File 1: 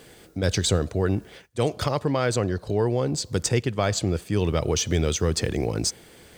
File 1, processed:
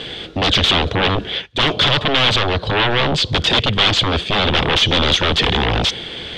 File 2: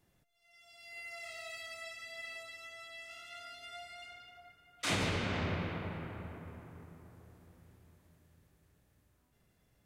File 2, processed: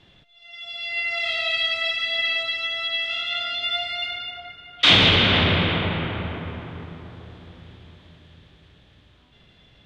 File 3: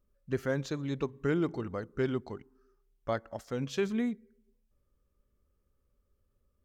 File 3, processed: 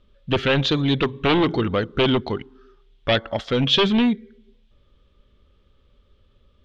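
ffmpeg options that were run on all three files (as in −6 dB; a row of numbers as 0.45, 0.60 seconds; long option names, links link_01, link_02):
-af "aeval=exprs='0.422*sin(PI/2*8.91*val(0)/0.422)':channel_layout=same,lowpass=frequency=3400:width_type=q:width=5.2,volume=-7dB"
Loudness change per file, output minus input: +9.5, +20.0, +13.0 LU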